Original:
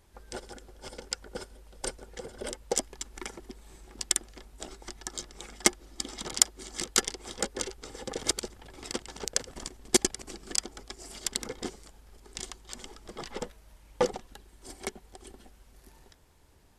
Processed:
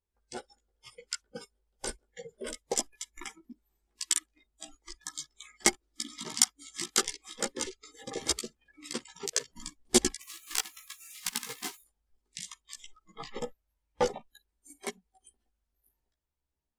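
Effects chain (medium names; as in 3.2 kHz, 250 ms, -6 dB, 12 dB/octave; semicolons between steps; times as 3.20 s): 10.20–11.81 s: formants flattened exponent 0.3; spectral noise reduction 28 dB; chorus voices 6, 0.21 Hz, delay 15 ms, depth 2.6 ms; trim +2 dB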